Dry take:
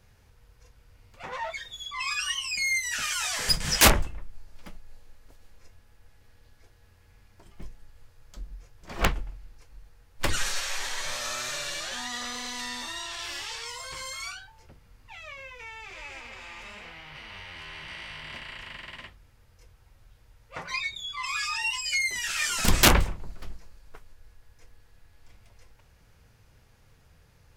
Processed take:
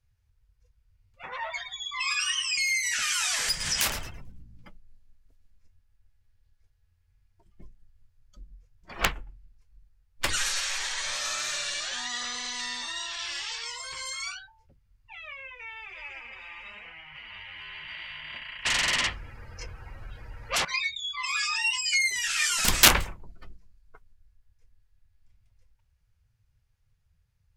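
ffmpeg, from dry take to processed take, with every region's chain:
-filter_complex "[0:a]asettb=1/sr,asplit=3[a][b][c];[a]atrim=end=1.274[d];[b]atrim=start=1.27:end=4.68,asetpts=PTS-STARTPTS,afade=t=in:d=0.004:c=qsin,afade=t=out:st=3.406:d=0.004:c=qsin,acompressor=threshold=-25dB:ratio=6:attack=3.2:release=140:knee=1:detection=peak,asplit=6[e][f][g][h][i][j];[f]adelay=110,afreqshift=53,volume=-10.5dB[k];[g]adelay=220,afreqshift=106,volume=-17.2dB[l];[h]adelay=330,afreqshift=159,volume=-24dB[m];[i]adelay=440,afreqshift=212,volume=-30.7dB[n];[j]adelay=550,afreqshift=265,volume=-37.5dB[o];[e][k][l][m][n][o]amix=inputs=6:normalize=0,atrim=end_sample=150381[p];[c]atrim=start=4.676[q];[d][p]acrossfade=d=0.004:c1=hsin:c2=qsin[r];[r][q]acrossfade=d=0.004:c1=qsin:c2=hsin,asettb=1/sr,asplit=3[s][t][u];[s]atrim=end=18.654[v];[t]atrim=start=18.65:end=20.65,asetpts=PTS-STARTPTS,afade=t=in:d=0.004:c=qsin,afade=t=out:st=1.996:d=0.004:c=qsin,highshelf=f=9.5k:g=-7.5,bandreject=f=3.6k:w=22,aeval=exprs='0.0708*sin(PI/2*7.94*val(0)/0.0708)':c=same[w];[u]atrim=start=20.646[x];[v][w]acrossfade=d=0.004:c1=hsin:c2=qsin[y];[y][x]acrossfade=d=0.004:c1=qsin:c2=hsin,afftdn=nr=21:nf=-46,tiltshelf=f=860:g=-5.5,volume=-2dB"

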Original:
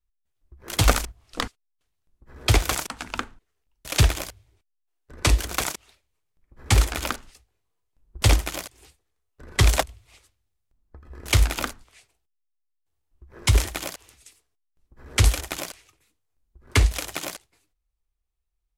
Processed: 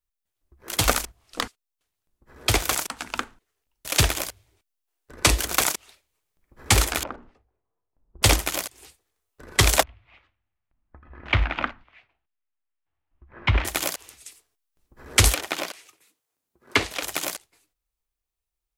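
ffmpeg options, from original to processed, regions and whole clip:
-filter_complex "[0:a]asettb=1/sr,asplit=3[a][b][c];[a]atrim=end=7.034[d];[b]atrim=start=7.03:end=8.23,asetpts=PTS-STARTPTS,afade=t=in:d=0.004:c=qsin,afade=t=out:st=1.196:d=0.004:c=qsin,lowpass=1k,bandreject=f=60:t=h:w=6,bandreject=f=120:t=h:w=6,bandreject=f=180:t=h:w=6,bandreject=f=240:t=h:w=6,bandreject=f=300:t=h:w=6,bandreject=f=360:t=h:w=6,bandreject=f=420:t=h:w=6,bandreject=f=480:t=h:w=6,acompressor=threshold=-40dB:ratio=1.5:attack=3.2:release=140:knee=1:detection=peak[e];[c]atrim=start=8.226[f];[d][e]acrossfade=d=0.004:c1=hsin:c2=qsin[g];[g][f]acrossfade=d=0.004:c1=qsin:c2=hsin,asettb=1/sr,asplit=3[h][i][j];[h]atrim=end=9.834[k];[i]atrim=start=9.83:end=13.65,asetpts=PTS-STARTPTS,afade=t=in:d=0.004:c=qsin,afade=t=out:st=3.816:d=0.004:c=qsin,lowpass=f=2.7k:w=0.5412,lowpass=f=2.7k:w=1.3066,equalizer=f=430:t=o:w=0.58:g=-9.5[l];[j]atrim=start=13.646[m];[k][l]acrossfade=d=0.004:c1=hsin:c2=qsin[n];[n][m]acrossfade=d=0.004:c1=qsin:c2=hsin,asettb=1/sr,asplit=3[o][p][q];[o]atrim=end=15.344[r];[p]atrim=start=15.34:end=17.03,asetpts=PTS-STARTPTS,afade=t=in:d=0.004:c=qsin,afade=t=out:st=1.686:d=0.004:c=qsin,acrossover=split=4900[s][t];[t]acompressor=threshold=-45dB:ratio=4:attack=1:release=60[u];[s][u]amix=inputs=2:normalize=0,highpass=180[v];[q]atrim=start=17.026[w];[r][v]acrossfade=d=0.004:c1=hsin:c2=qsin[x];[x][w]acrossfade=d=0.004:c1=qsin:c2=hsin,highshelf=f=9.8k:g=5.5,dynaudnorm=f=670:g=9:m=11.5dB,lowshelf=f=160:g=-9.5"

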